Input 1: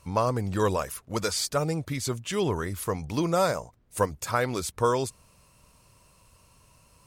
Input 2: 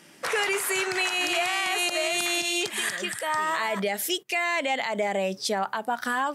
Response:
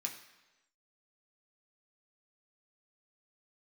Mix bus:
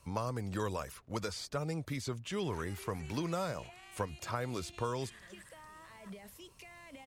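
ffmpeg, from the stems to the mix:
-filter_complex "[0:a]volume=-5dB[a];[1:a]alimiter=level_in=2.5dB:limit=-24dB:level=0:latency=1:release=84,volume=-2.5dB,acrossover=split=260[b][c];[c]acompressor=threshold=-43dB:ratio=10[d];[b][d]amix=inputs=2:normalize=0,adelay=2300,volume=-8dB[e];[a][e]amix=inputs=2:normalize=0,acrossover=split=210|1200|5600[f][g][h][i];[f]acompressor=threshold=-39dB:ratio=4[j];[g]acompressor=threshold=-37dB:ratio=4[k];[h]acompressor=threshold=-43dB:ratio=4[l];[i]acompressor=threshold=-55dB:ratio=4[m];[j][k][l][m]amix=inputs=4:normalize=0"

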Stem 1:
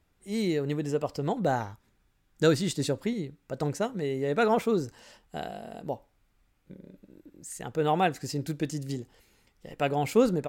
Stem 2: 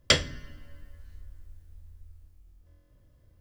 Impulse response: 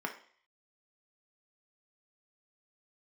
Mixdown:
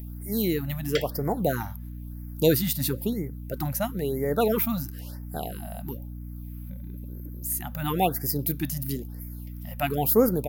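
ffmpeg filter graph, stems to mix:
-filter_complex "[0:a]bandreject=f=1k:w=25,aexciter=amount=13.8:drive=7.9:freq=11k,volume=2dB[a];[1:a]bass=f=250:g=-11,treble=f=4k:g=-9,adelay=850,volume=-8dB[b];[a][b]amix=inputs=2:normalize=0,acompressor=mode=upward:threshold=-44dB:ratio=2.5,aeval=exprs='val(0)+0.0158*(sin(2*PI*60*n/s)+sin(2*PI*2*60*n/s)/2+sin(2*PI*3*60*n/s)/3+sin(2*PI*4*60*n/s)/4+sin(2*PI*5*60*n/s)/5)':c=same,afftfilt=real='re*(1-between(b*sr/1024,360*pow(3400/360,0.5+0.5*sin(2*PI*1*pts/sr))/1.41,360*pow(3400/360,0.5+0.5*sin(2*PI*1*pts/sr))*1.41))':imag='im*(1-between(b*sr/1024,360*pow(3400/360,0.5+0.5*sin(2*PI*1*pts/sr))/1.41,360*pow(3400/360,0.5+0.5*sin(2*PI*1*pts/sr))*1.41))':win_size=1024:overlap=0.75"

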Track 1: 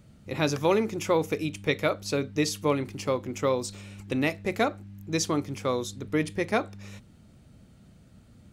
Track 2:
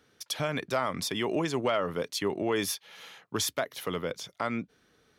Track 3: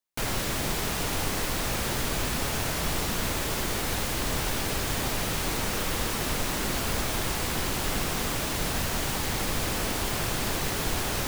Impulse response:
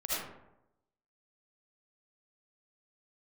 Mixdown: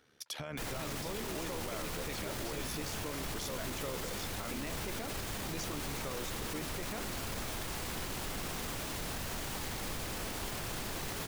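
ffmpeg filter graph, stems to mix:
-filter_complex "[0:a]adelay=400,volume=-1.5dB[a];[1:a]volume=0dB[b];[2:a]adelay=400,volume=-9dB[c];[a][b]amix=inputs=2:normalize=0,tremolo=f=73:d=0.667,acompressor=threshold=-34dB:ratio=6,volume=0dB[d];[c][d]amix=inputs=2:normalize=0,alimiter=level_in=5.5dB:limit=-24dB:level=0:latency=1:release=13,volume=-5.5dB"

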